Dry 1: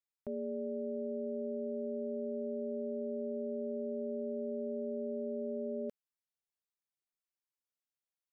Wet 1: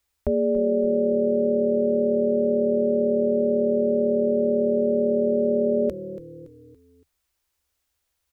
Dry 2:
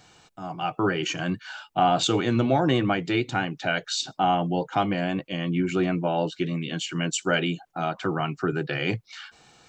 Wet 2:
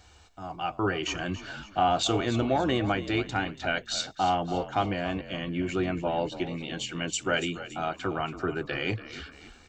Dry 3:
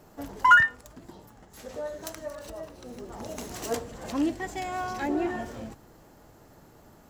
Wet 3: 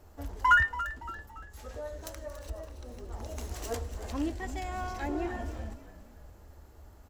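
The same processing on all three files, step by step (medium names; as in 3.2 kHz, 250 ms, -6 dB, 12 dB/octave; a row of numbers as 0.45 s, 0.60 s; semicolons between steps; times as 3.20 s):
resonant low shelf 100 Hz +11 dB, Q 3; frequency-shifting echo 283 ms, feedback 44%, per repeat -38 Hz, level -13.5 dB; peak normalisation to -12 dBFS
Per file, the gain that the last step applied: +17.5 dB, -3.0 dB, -5.0 dB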